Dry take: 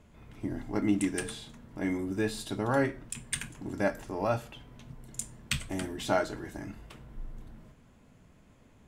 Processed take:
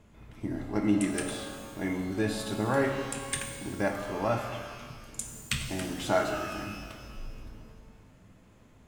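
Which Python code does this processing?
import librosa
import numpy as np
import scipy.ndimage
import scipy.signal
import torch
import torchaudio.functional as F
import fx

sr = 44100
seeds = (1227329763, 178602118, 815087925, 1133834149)

y = fx.rev_shimmer(x, sr, seeds[0], rt60_s=1.7, semitones=12, shimmer_db=-8, drr_db=4.0)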